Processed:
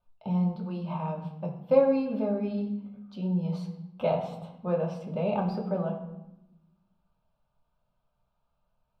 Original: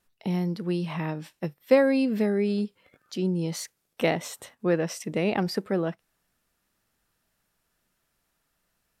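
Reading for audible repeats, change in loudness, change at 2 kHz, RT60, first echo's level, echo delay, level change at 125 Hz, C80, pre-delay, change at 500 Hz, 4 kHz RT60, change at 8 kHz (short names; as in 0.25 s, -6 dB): none, -2.5 dB, -14.0 dB, 0.95 s, none, none, -0.5 dB, 10.5 dB, 3 ms, -1.5 dB, 0.65 s, under -25 dB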